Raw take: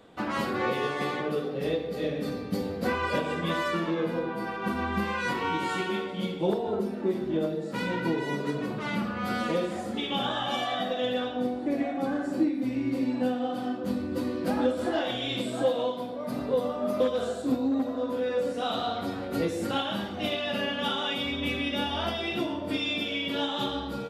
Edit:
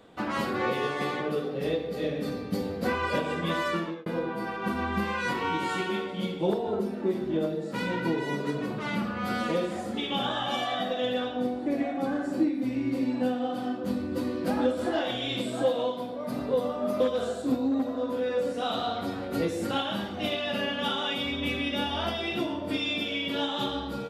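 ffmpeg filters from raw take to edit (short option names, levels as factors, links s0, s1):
-filter_complex "[0:a]asplit=2[s0][s1];[s0]atrim=end=4.06,asetpts=PTS-STARTPTS,afade=t=out:st=3.76:d=0.3[s2];[s1]atrim=start=4.06,asetpts=PTS-STARTPTS,afade=t=in:d=0.004:c=hsin[s3];[s2][s3]concat=n=2:v=0:a=1"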